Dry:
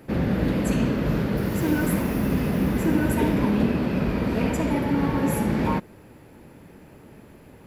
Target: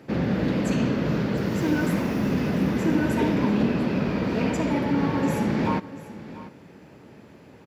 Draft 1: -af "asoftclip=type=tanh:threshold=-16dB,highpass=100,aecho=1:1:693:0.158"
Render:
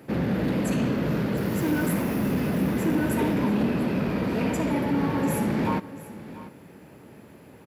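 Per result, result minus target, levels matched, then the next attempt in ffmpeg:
soft clipping: distortion +13 dB; 8,000 Hz band +4.5 dB
-af "asoftclip=type=tanh:threshold=-7.5dB,highpass=100,aecho=1:1:693:0.158"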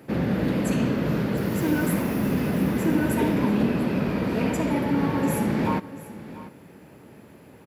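8,000 Hz band +4.0 dB
-af "asoftclip=type=tanh:threshold=-7.5dB,highpass=100,highshelf=frequency=7900:width_type=q:width=1.5:gain=-9,aecho=1:1:693:0.158"

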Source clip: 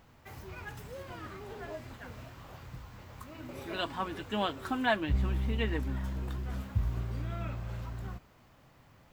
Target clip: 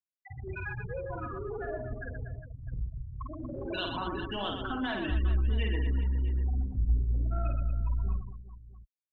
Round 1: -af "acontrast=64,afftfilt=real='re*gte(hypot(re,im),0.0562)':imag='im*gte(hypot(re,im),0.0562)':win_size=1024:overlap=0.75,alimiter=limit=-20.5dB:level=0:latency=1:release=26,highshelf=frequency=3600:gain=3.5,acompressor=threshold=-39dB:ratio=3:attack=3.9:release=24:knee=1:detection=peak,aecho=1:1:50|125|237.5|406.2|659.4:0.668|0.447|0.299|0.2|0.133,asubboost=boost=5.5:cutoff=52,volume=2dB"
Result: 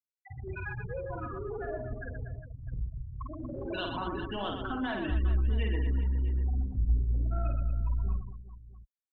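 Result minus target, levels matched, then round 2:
4,000 Hz band −3.5 dB
-af "acontrast=64,afftfilt=real='re*gte(hypot(re,im),0.0562)':imag='im*gte(hypot(re,im),0.0562)':win_size=1024:overlap=0.75,alimiter=limit=-20.5dB:level=0:latency=1:release=26,highshelf=frequency=3600:gain=15,acompressor=threshold=-39dB:ratio=3:attack=3.9:release=24:knee=1:detection=peak,aecho=1:1:50|125|237.5|406.2|659.4:0.668|0.447|0.299|0.2|0.133,asubboost=boost=5.5:cutoff=52,volume=2dB"

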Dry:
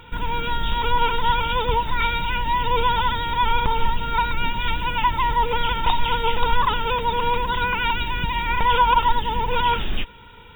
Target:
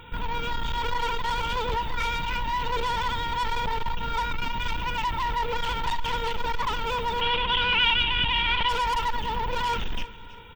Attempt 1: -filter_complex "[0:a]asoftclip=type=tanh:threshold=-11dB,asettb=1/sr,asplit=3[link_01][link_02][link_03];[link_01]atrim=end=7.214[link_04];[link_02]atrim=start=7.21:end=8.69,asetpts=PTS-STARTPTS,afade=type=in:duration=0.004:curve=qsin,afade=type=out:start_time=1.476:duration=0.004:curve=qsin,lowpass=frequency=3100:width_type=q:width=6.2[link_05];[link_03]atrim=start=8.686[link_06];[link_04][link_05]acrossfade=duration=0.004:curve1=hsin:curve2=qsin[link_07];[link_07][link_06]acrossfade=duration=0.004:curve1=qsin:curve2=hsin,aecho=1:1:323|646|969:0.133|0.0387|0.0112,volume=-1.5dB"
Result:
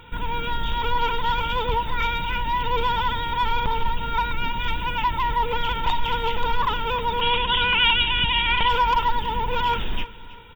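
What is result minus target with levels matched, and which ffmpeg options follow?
soft clipping: distortion −11 dB
-filter_complex "[0:a]asoftclip=type=tanh:threshold=-21.5dB,asettb=1/sr,asplit=3[link_01][link_02][link_03];[link_01]atrim=end=7.214[link_04];[link_02]atrim=start=7.21:end=8.69,asetpts=PTS-STARTPTS,afade=type=in:duration=0.004:curve=qsin,afade=type=out:start_time=1.476:duration=0.004:curve=qsin,lowpass=frequency=3100:width_type=q:width=6.2[link_05];[link_03]atrim=start=8.686[link_06];[link_04][link_05]acrossfade=duration=0.004:curve1=hsin:curve2=qsin[link_07];[link_07][link_06]acrossfade=duration=0.004:curve1=qsin:curve2=hsin,aecho=1:1:323|646|969:0.133|0.0387|0.0112,volume=-1.5dB"

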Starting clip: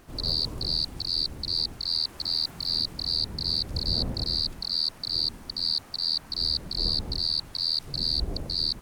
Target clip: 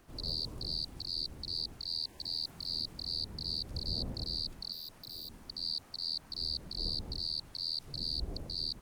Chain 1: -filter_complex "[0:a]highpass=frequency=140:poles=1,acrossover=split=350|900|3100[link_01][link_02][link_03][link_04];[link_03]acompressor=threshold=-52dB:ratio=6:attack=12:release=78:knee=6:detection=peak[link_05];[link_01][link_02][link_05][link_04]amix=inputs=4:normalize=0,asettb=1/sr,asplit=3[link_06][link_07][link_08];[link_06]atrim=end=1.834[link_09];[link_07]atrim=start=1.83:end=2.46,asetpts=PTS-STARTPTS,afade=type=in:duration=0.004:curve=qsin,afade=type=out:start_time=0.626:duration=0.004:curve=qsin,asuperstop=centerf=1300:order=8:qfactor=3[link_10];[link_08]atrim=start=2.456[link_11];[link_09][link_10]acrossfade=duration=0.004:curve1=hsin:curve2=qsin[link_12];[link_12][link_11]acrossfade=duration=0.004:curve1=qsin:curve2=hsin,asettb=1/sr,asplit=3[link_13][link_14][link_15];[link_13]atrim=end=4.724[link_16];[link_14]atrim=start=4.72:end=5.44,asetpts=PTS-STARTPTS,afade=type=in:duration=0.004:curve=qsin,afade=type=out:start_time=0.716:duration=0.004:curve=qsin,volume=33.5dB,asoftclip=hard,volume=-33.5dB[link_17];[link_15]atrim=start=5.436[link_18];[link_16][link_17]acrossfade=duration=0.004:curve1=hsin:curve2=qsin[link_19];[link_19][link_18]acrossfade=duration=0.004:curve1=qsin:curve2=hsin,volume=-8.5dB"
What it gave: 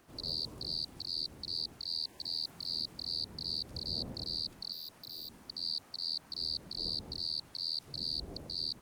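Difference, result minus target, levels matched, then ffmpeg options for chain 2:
125 Hz band −4.5 dB
-filter_complex "[0:a]acrossover=split=350|900|3100[link_01][link_02][link_03][link_04];[link_03]acompressor=threshold=-52dB:ratio=6:attack=12:release=78:knee=6:detection=peak[link_05];[link_01][link_02][link_05][link_04]amix=inputs=4:normalize=0,asettb=1/sr,asplit=3[link_06][link_07][link_08];[link_06]atrim=end=1.834[link_09];[link_07]atrim=start=1.83:end=2.46,asetpts=PTS-STARTPTS,afade=type=in:duration=0.004:curve=qsin,afade=type=out:start_time=0.626:duration=0.004:curve=qsin,asuperstop=centerf=1300:order=8:qfactor=3[link_10];[link_08]atrim=start=2.456[link_11];[link_09][link_10]acrossfade=duration=0.004:curve1=hsin:curve2=qsin[link_12];[link_12][link_11]acrossfade=duration=0.004:curve1=qsin:curve2=hsin,asettb=1/sr,asplit=3[link_13][link_14][link_15];[link_13]atrim=end=4.724[link_16];[link_14]atrim=start=4.72:end=5.44,asetpts=PTS-STARTPTS,afade=type=in:duration=0.004:curve=qsin,afade=type=out:start_time=0.716:duration=0.004:curve=qsin,volume=33.5dB,asoftclip=hard,volume=-33.5dB[link_17];[link_15]atrim=start=5.436[link_18];[link_16][link_17]acrossfade=duration=0.004:curve1=hsin:curve2=qsin[link_19];[link_19][link_18]acrossfade=duration=0.004:curve1=qsin:curve2=hsin,volume=-8.5dB"

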